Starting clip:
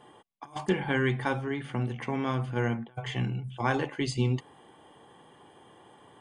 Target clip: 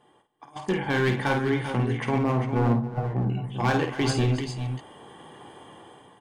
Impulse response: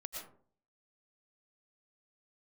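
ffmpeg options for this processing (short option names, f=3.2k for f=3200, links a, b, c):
-filter_complex "[0:a]asettb=1/sr,asplit=3[a][b][c];[a]atrim=end=2.184[d];[b]atrim=start=2.18:end=3.3,asetpts=PTS-STARTPTS,afade=t=in:d=0.004:c=qsin,afade=t=out:st=1.116:d=0.004:c=qsin,lowpass=f=1.1k:w=0.5412,lowpass=f=1.1k:w=1.3066[e];[c]atrim=start=3.296[f];[d][e]acrossfade=d=0.004:c1=hsin:c2=qsin[g];[g][f]acrossfade=d=0.004:c1=qsin:c2=hsin,dynaudnorm=f=290:g=5:m=14.5dB,asoftclip=type=hard:threshold=-12dB,aecho=1:1:51|272|392|407:0.422|0.158|0.251|0.282,volume=-6.5dB"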